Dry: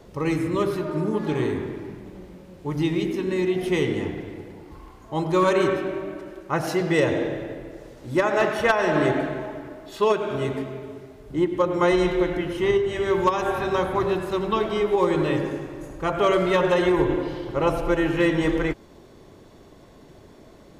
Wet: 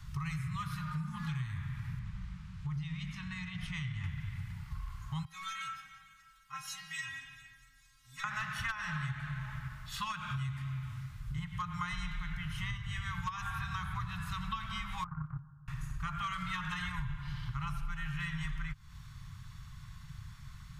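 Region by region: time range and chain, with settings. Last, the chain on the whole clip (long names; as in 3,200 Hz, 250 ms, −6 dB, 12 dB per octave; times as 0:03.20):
0:01.99–0:04.04: downward compressor 2.5 to 1, threshold −29 dBFS + high-frequency loss of the air 59 metres
0:05.25–0:08.24: tilt shelving filter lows −6 dB, about 1,400 Hz + stiff-string resonator 260 Hz, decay 0.27 s, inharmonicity 0.002 + delay with a high-pass on its return 227 ms, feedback 67%, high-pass 4,800 Hz, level −17 dB
0:15.04–0:15.68: Butterworth low-pass 1,500 Hz 96 dB per octave + noise gate −21 dBFS, range −22 dB
whole clip: elliptic band-stop filter 140–1,200 Hz, stop band 70 dB; low-shelf EQ 490 Hz +8 dB; downward compressor, threshold −35 dBFS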